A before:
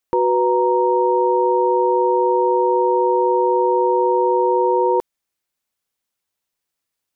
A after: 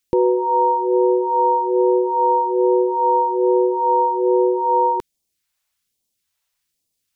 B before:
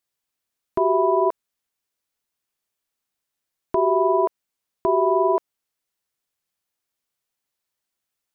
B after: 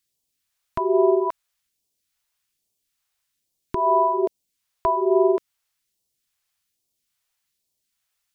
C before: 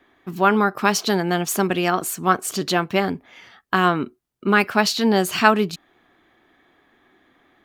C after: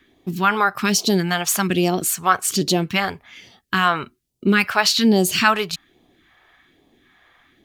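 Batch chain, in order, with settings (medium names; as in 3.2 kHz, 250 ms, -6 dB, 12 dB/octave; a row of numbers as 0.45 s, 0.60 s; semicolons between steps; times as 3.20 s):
phase shifter stages 2, 1.2 Hz, lowest notch 240–1500 Hz; in parallel at +2 dB: peak limiter -14.5 dBFS; on the sum: trim -1.5 dB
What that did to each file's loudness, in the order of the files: -0.5 LU, -0.5 LU, +1.0 LU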